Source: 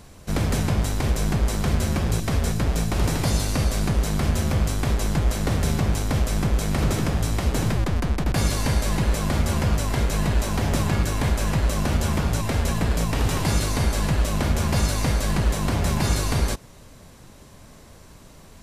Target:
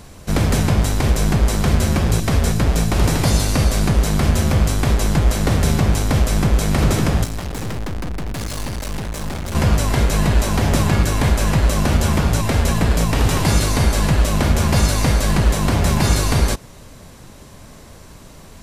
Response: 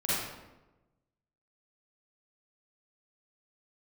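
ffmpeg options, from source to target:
-filter_complex "[0:a]asettb=1/sr,asplit=3[link_01][link_02][link_03];[link_01]atrim=end=7.244[link_04];[link_02]atrim=start=7.24:end=9.55,asetpts=PTS-STARTPTS,afade=type=in:duration=0.004:curve=qsin,afade=type=out:start_time=2.306:duration=0.004:curve=qsin,aeval=exprs='(tanh(31.6*val(0)+0.65)-tanh(0.65))/31.6':channel_layout=same[link_05];[link_03]atrim=start=9.546[link_06];[link_04][link_05]acrossfade=duration=0.004:curve1=hsin:curve2=qsin[link_07];[link_07][link_06]acrossfade=duration=0.004:curve1=qsin:curve2=hsin,volume=6dB"

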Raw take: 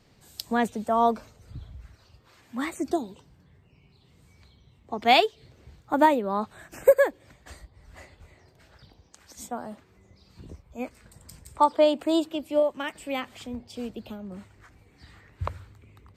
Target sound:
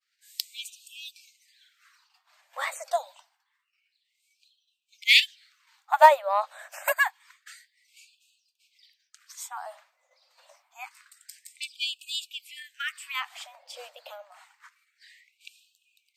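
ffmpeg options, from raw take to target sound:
ffmpeg -i in.wav -af "agate=range=-33dB:threshold=-50dB:ratio=3:detection=peak,aeval=exprs='0.562*(cos(1*acos(clip(val(0)/0.562,-1,1)))-cos(1*PI/2))+0.0224*(cos(7*acos(clip(val(0)/0.562,-1,1)))-cos(7*PI/2))':channel_layout=same,afftfilt=real='re*gte(b*sr/1024,480*pow(2500/480,0.5+0.5*sin(2*PI*0.27*pts/sr)))':imag='im*gte(b*sr/1024,480*pow(2500/480,0.5+0.5*sin(2*PI*0.27*pts/sr)))':win_size=1024:overlap=0.75,volume=6dB" out.wav

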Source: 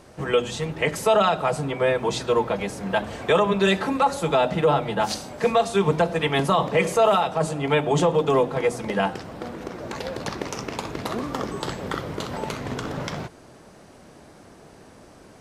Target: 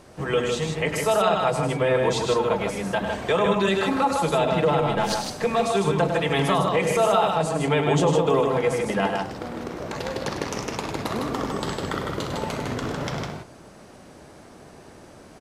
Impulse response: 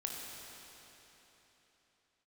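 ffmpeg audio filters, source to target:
-filter_complex "[0:a]alimiter=limit=-13dB:level=0:latency=1:release=57,asettb=1/sr,asplit=3[link_01][link_02][link_03];[link_01]atrim=end=4.794[link_04];[link_02]atrim=start=4.79:end=5.46,asetpts=PTS-STARTPTS,afade=type=in:duration=0.004:curve=qsin,afade=type=out:start_time=0.666:duration=0.004:curve=qsin,aeval=exprs='0.224*(cos(1*acos(clip(val(0)/0.224,-1,1)))-cos(1*PI/2))+0.00891*(cos(6*acos(clip(val(0)/0.224,-1,1)))-cos(6*PI/2))':channel_layout=same[link_05];[link_03]atrim=start=5.456[link_06];[link_04][link_05]acrossfade=duration=0.004:curve1=hsin:curve2=qsin[link_07];[link_07][link_06]acrossfade=duration=0.004:curve1=qsin:curve2=hsin,aecho=1:1:101|155:0.398|0.596"

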